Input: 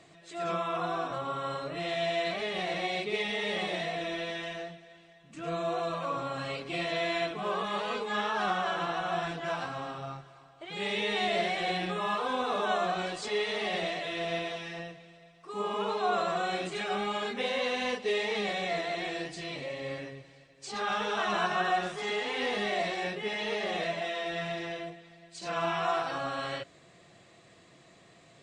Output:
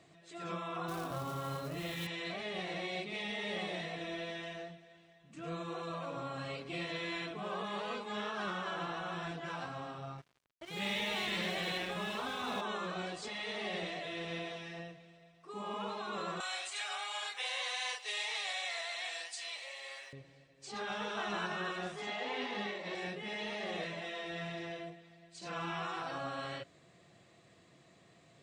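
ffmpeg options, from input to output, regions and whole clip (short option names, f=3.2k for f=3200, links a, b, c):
-filter_complex "[0:a]asettb=1/sr,asplit=3[a][b][c];[a]atrim=end=0.884[d];[b]atrim=start=0.88:end=2.07,asetpts=PTS-STARTPTS,afade=t=in:d=0.004:c=qsin,afade=t=out:st=1.186:d=0.004:c=qsin,lowshelf=f=160:g=11.5,bandreject=f=60:t=h:w=6,bandreject=f=120:t=h:w=6,bandreject=f=180:t=h:w=6,bandreject=f=240:t=h:w=6,acrusher=bits=3:mode=log:mix=0:aa=0.000001[e];[c]atrim=start=2.066[f];[d][e]acrossfade=d=0.004:c1=hsin:c2=qsin[g];[g][f]acrossfade=d=0.004:c1=qsin:c2=hsin,asettb=1/sr,asplit=3[h][i][j];[h]atrim=end=10.184[k];[i]atrim=start=10.18:end=12.61,asetpts=PTS-STARTPTS,afade=t=in:d=0.004:c=qsin,afade=t=out:st=2.426:d=0.004:c=qsin,bandreject=f=740:w=14,acontrast=31,aeval=exprs='sgn(val(0))*max(abs(val(0))-0.00668,0)':c=same[l];[j]atrim=start=12.606[m];[k][l]acrossfade=d=0.004:c1=hsin:c2=qsin[n];[n][m]acrossfade=d=0.004:c1=qsin:c2=hsin,asettb=1/sr,asplit=3[o][p][q];[o]atrim=end=16.404[r];[p]atrim=start=16.4:end=20.13,asetpts=PTS-STARTPTS,afade=t=in:d=0.004:c=qsin,afade=t=out:st=3.726:d=0.004:c=qsin,highpass=f=740:w=0.5412,highpass=f=740:w=1.3066,aemphasis=mode=production:type=75kf[s];[q]atrim=start=20.126[t];[r][s]acrossfade=d=0.004:c1=hsin:c2=qsin[u];[u][t]acrossfade=d=0.004:c1=qsin:c2=hsin,asettb=1/sr,asplit=3[v][w][x];[v]atrim=end=22.074[y];[w]atrim=start=22.07:end=22.95,asetpts=PTS-STARTPTS,afade=t=in:d=0.004:c=qsin,afade=t=out:st=0.876:d=0.004:c=qsin,highpass=140,lowpass=6.2k,equalizer=f=700:t=o:w=0.61:g=11.5,acompressor=threshold=-23dB:ratio=5:attack=3.2:release=140:knee=1:detection=peak[z];[x]atrim=start=22.946[aa];[y][z]acrossfade=d=0.004:c1=hsin:c2=qsin[ab];[ab][aa]acrossfade=d=0.004:c1=qsin:c2=hsin,highpass=f=100:p=1,afftfilt=real='re*lt(hypot(re,im),0.178)':imag='im*lt(hypot(re,im),0.178)':win_size=1024:overlap=0.75,lowshelf=f=190:g=8,volume=-6.5dB"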